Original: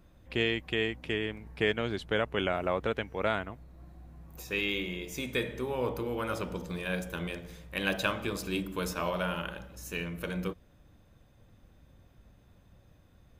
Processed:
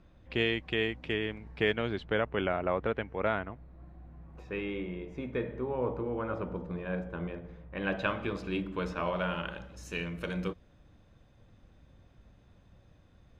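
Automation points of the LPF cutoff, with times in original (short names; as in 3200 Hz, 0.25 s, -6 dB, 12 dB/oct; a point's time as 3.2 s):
1.65 s 4600 Hz
2.3 s 2300 Hz
4.24 s 2300 Hz
4.67 s 1300 Hz
7.71 s 1300 Hz
8.12 s 2700 Hz
9.08 s 2700 Hz
9.73 s 6100 Hz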